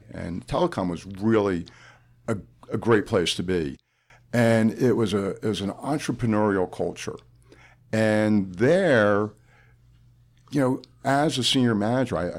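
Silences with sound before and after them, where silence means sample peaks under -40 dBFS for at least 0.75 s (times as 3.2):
9.31–10.48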